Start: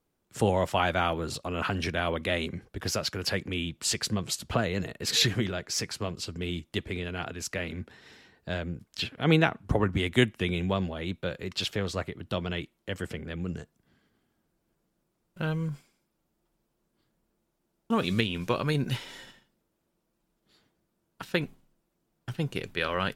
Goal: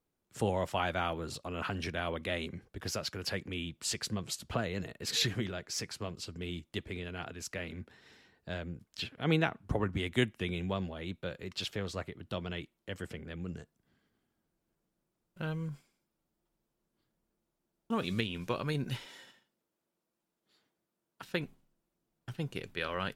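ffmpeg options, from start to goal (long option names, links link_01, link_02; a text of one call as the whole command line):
ffmpeg -i in.wav -filter_complex "[0:a]asettb=1/sr,asplit=3[link_01][link_02][link_03];[link_01]atrim=end=19.064[link_04];[link_02]atrim=start=19.06:end=21.23,asetpts=PTS-STARTPTS,afade=type=in:duration=0.004:curve=qsin,afade=type=out:start_time=2.166:duration=0.004:curve=qsin,highpass=frequency=270:poles=1[link_05];[link_03]atrim=start=21.226[link_06];[link_04][link_05]acrossfade=duration=0.004:curve1=hsin:curve2=qsin[link_07];[link_07][link_06]acrossfade=duration=0.004:curve1=qsin:curve2=hsin,volume=-6.5dB" out.wav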